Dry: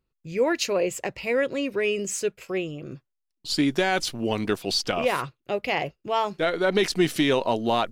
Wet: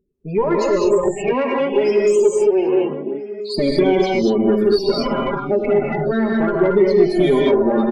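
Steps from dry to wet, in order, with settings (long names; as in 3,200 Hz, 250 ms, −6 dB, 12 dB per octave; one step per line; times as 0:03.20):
lower of the sound and its delayed copy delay 5 ms
0:01.15–0:03.58: high-pass filter 220 Hz 24 dB per octave
spectral peaks only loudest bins 16
reverb whose tail is shaped and stops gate 250 ms rising, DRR −1.5 dB
downward compressor 3 to 1, threshold −25 dBFS, peak gain reduction 10 dB
soft clipping −18.5 dBFS, distortion −22 dB
parametric band 330 Hz +12 dB 1.2 octaves
slap from a distant wall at 230 metres, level −13 dB
level +5.5 dB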